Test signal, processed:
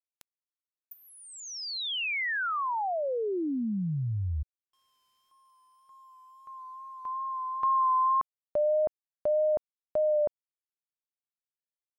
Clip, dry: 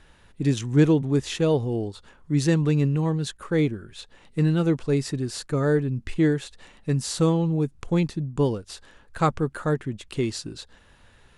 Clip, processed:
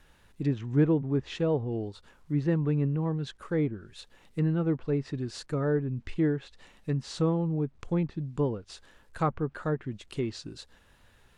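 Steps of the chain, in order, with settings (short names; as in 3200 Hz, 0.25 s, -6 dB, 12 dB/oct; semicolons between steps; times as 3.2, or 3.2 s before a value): wow and flutter 29 cents; bit-crush 11-bit; treble ducked by the level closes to 1700 Hz, closed at -19 dBFS; gain -5.5 dB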